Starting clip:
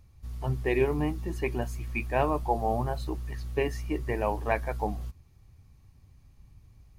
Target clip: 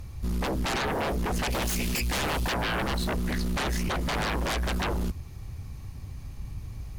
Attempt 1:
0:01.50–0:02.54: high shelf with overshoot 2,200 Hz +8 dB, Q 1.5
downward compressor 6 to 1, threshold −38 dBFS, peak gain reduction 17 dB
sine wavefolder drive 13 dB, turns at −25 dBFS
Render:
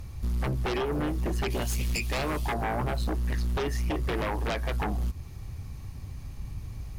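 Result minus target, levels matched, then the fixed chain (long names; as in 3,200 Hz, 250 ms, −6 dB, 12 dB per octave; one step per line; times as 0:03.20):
downward compressor: peak gain reduction +6.5 dB
0:01.50–0:02.54: high shelf with overshoot 2,200 Hz +8 dB, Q 1.5
downward compressor 6 to 1, threshold −30 dBFS, peak gain reduction 10.5 dB
sine wavefolder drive 13 dB, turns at −25 dBFS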